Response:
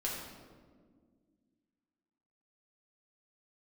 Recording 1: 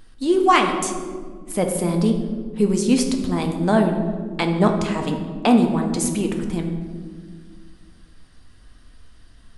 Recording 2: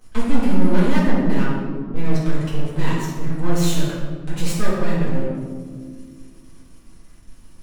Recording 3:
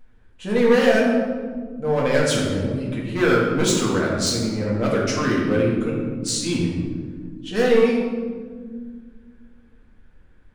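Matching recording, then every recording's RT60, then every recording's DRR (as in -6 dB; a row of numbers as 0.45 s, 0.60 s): 3; 1.8 s, 1.7 s, 1.7 s; 3.5 dB, -9.5 dB, -5.0 dB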